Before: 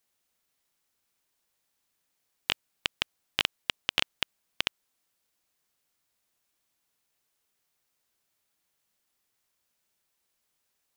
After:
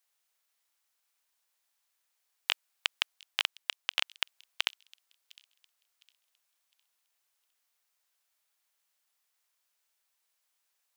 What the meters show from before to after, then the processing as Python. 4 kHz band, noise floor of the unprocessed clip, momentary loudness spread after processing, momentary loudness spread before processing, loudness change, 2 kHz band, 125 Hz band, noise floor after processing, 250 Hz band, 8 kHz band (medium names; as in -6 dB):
-1.5 dB, -79 dBFS, 4 LU, 6 LU, -1.5 dB, -1.5 dB, under -25 dB, -80 dBFS, under -15 dB, -1.5 dB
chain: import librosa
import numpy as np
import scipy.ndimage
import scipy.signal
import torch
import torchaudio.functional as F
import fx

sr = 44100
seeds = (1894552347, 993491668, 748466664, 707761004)

y = scipy.signal.sosfilt(scipy.signal.butter(2, 700.0, 'highpass', fs=sr, output='sos'), x)
y = fx.rider(y, sr, range_db=10, speed_s=0.5)
y = fx.echo_wet_highpass(y, sr, ms=708, feedback_pct=31, hz=4100.0, wet_db=-19.5)
y = y * 10.0 ** (-1.5 / 20.0)